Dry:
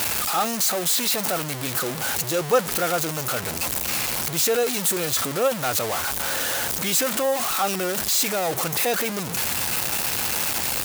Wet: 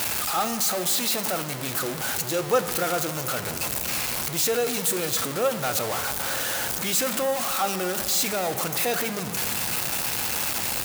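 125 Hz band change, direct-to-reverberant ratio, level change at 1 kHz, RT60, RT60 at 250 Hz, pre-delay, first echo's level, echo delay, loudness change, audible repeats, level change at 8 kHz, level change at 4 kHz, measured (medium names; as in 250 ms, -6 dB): -2.0 dB, 9.5 dB, -2.0 dB, 2.8 s, 3.2 s, 3 ms, no echo, no echo, -2.0 dB, no echo, -2.5 dB, -2.0 dB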